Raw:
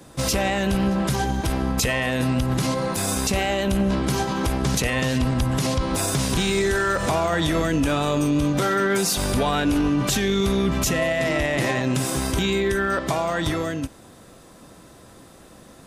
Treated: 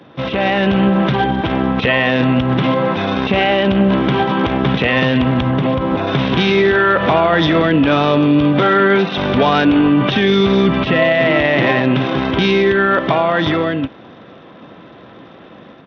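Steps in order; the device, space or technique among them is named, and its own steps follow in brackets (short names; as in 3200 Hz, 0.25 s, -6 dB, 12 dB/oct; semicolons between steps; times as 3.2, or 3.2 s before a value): 5.51–6.07 high shelf 2000 Hz -10 dB; Bluetooth headset (HPF 140 Hz 12 dB/oct; AGC gain up to 4.5 dB; downsampling 8000 Hz; gain +5 dB; SBC 64 kbps 32000 Hz)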